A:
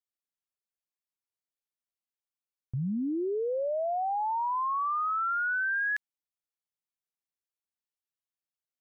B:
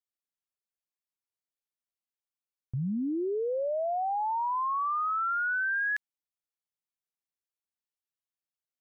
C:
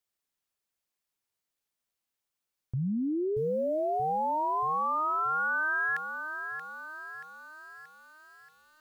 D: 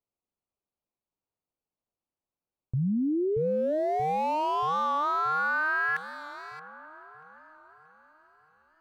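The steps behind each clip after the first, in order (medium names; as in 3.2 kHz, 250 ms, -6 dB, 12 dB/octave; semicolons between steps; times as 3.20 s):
no audible change
peak limiter -34 dBFS, peak gain reduction 8 dB; bit-crushed delay 630 ms, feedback 55%, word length 11-bit, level -8.5 dB; trim +7.5 dB
local Wiener filter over 25 samples; feedback echo behind a band-pass 177 ms, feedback 83%, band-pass 1.5 kHz, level -22.5 dB; warped record 45 rpm, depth 100 cents; trim +3.5 dB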